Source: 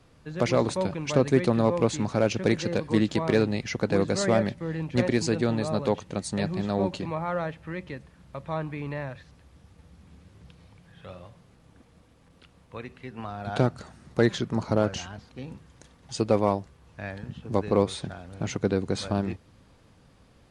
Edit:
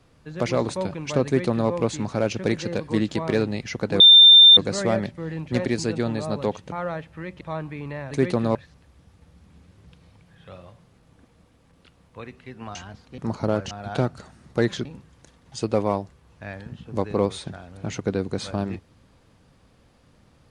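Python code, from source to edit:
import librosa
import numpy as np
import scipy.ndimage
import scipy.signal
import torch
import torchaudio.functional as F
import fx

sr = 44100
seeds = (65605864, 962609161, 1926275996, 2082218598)

y = fx.edit(x, sr, fx.duplicate(start_s=1.25, length_s=0.44, to_s=9.12),
    fx.insert_tone(at_s=4.0, length_s=0.57, hz=3590.0, db=-6.5),
    fx.cut(start_s=6.15, length_s=1.07),
    fx.cut(start_s=7.91, length_s=0.51),
    fx.swap(start_s=13.32, length_s=1.14, other_s=14.99, other_length_s=0.43), tone=tone)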